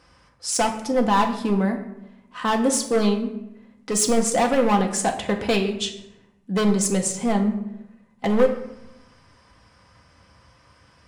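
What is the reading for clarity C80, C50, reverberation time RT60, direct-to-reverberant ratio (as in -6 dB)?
12.0 dB, 9.5 dB, 0.90 s, 2.0 dB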